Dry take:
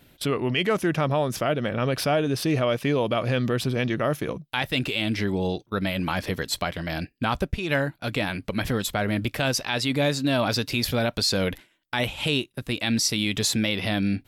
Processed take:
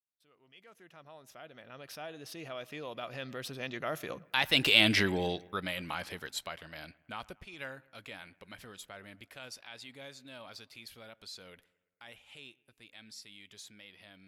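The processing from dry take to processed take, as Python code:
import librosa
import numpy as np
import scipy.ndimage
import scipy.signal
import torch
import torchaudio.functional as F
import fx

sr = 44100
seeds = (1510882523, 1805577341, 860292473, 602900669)

p1 = fx.fade_in_head(x, sr, length_s=2.37)
p2 = fx.doppler_pass(p1, sr, speed_mps=15, closest_m=3.3, pass_at_s=4.85)
p3 = fx.low_shelf(p2, sr, hz=460.0, db=-12.0)
p4 = p3 + fx.echo_bbd(p3, sr, ms=113, stages=2048, feedback_pct=53, wet_db=-23.0, dry=0)
y = p4 * librosa.db_to_amplitude(6.5)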